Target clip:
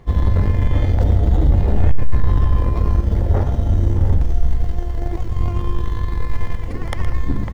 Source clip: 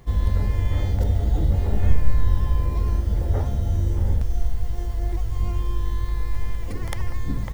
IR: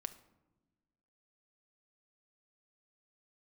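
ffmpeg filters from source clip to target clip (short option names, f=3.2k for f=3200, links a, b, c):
-filter_complex "[0:a]asplit=2[a][b];[b]acrusher=bits=2:mix=0:aa=0.5,volume=-4dB[c];[a][c]amix=inputs=2:normalize=0,lowpass=f=2.4k:p=1,bandreject=f=50:t=h:w=6,bandreject=f=100:t=h:w=6,bandreject=f=150:t=h:w=6,bandreject=f=200:t=h:w=6,aecho=1:1:117:0.237,asoftclip=type=tanh:threshold=-9.5dB,volume=4.5dB"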